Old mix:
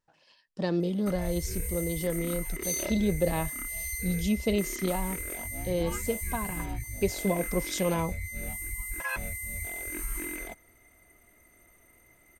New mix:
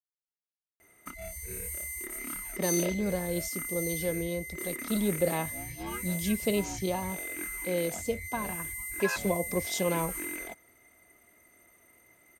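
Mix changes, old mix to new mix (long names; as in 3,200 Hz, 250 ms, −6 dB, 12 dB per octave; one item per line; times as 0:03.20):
speech: entry +2.00 s
master: add high-pass filter 180 Hz 6 dB per octave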